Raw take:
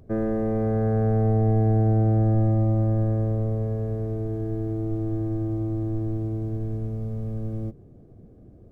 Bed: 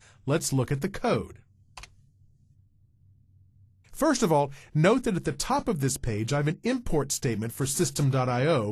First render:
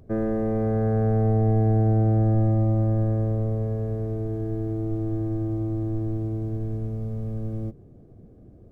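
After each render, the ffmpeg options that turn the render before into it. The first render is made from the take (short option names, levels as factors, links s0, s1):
-af anull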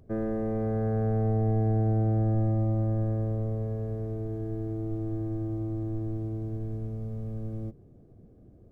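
-af "volume=0.562"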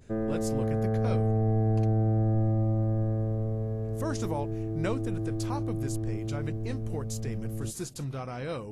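-filter_complex "[1:a]volume=0.282[s0];[0:a][s0]amix=inputs=2:normalize=0"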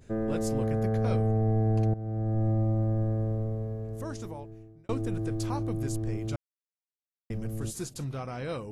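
-filter_complex "[0:a]asplit=5[s0][s1][s2][s3][s4];[s0]atrim=end=1.94,asetpts=PTS-STARTPTS,afade=t=out:st=1.936:d=0.004:c=hsin:silence=0.177828[s5];[s1]atrim=start=1.94:end=4.89,asetpts=PTS-STARTPTS,afade=t=in:d=0.56:silence=0.177828,afade=t=out:st=1.36:d=1.59[s6];[s2]atrim=start=4.89:end=6.36,asetpts=PTS-STARTPTS,afade=t=in:d=0.004:c=hsin,afade=t=out:st=1.466:d=0.004:c=hsin[s7];[s3]atrim=start=6.36:end=7.3,asetpts=PTS-STARTPTS,volume=0[s8];[s4]atrim=start=7.3,asetpts=PTS-STARTPTS,afade=t=in:d=0.004:c=hsin[s9];[s5][s6][s7][s8][s9]concat=n=5:v=0:a=1"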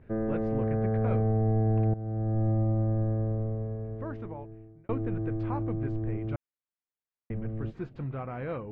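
-af "lowpass=f=2300:w=0.5412,lowpass=f=2300:w=1.3066"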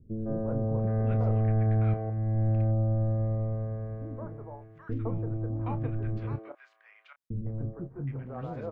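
-filter_complex "[0:a]asplit=2[s0][s1];[s1]adelay=29,volume=0.299[s2];[s0][s2]amix=inputs=2:normalize=0,acrossover=split=370|1200[s3][s4][s5];[s4]adelay=160[s6];[s5]adelay=770[s7];[s3][s6][s7]amix=inputs=3:normalize=0"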